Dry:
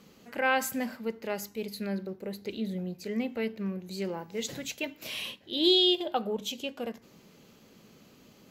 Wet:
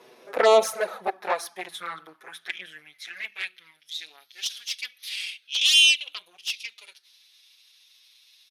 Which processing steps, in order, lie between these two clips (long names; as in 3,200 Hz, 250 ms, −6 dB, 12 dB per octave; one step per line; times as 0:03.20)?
high-shelf EQ 3,300 Hz −5 dB
pitch shifter −3 semitones
harmonic generator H 3 −25 dB, 5 −21 dB, 6 −13 dB, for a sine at −13 dBFS
high-pass filter sweep 510 Hz → 3,700 Hz, 0:00.47–0:03.96
flanger swept by the level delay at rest 8.5 ms, full sweep at −18.5 dBFS
level +8 dB